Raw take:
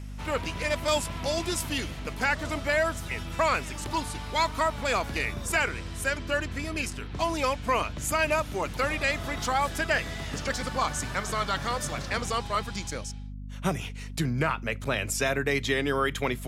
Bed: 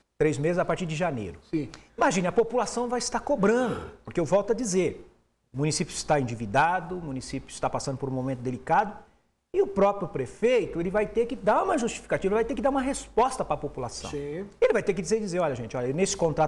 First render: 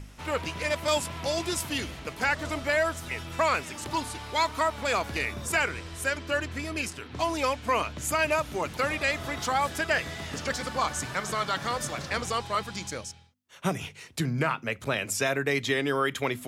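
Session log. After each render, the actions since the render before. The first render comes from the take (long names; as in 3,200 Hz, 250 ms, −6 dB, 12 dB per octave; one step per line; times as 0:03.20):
hum removal 50 Hz, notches 5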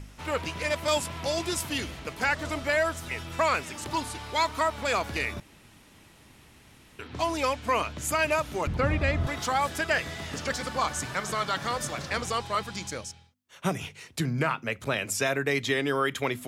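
0:05.40–0:06.99: fill with room tone
0:08.67–0:09.27: RIAA equalisation playback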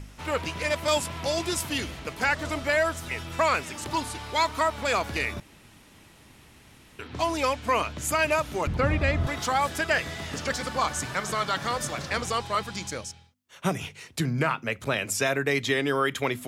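level +1.5 dB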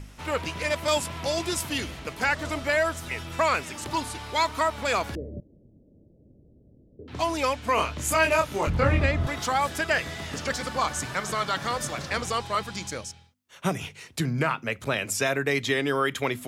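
0:05.15–0:07.08: elliptic low-pass filter 570 Hz, stop band 50 dB
0:07.75–0:09.06: double-tracking delay 25 ms −2.5 dB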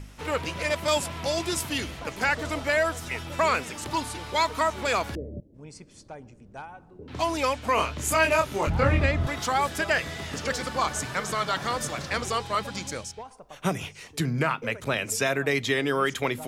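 mix in bed −19 dB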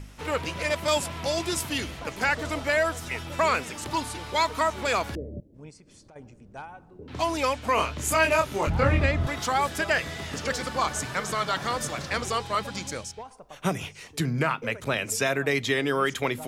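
0:05.70–0:06.16: downward compressor 12 to 1, threshold −48 dBFS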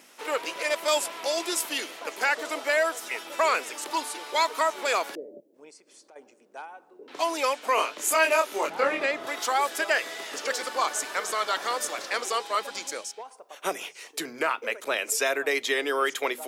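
high-pass filter 350 Hz 24 dB per octave
high-shelf EQ 10,000 Hz +6.5 dB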